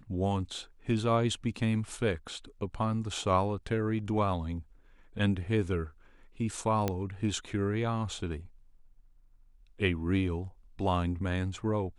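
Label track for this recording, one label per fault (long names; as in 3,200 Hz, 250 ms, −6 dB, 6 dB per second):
6.880000	6.880000	click −15 dBFS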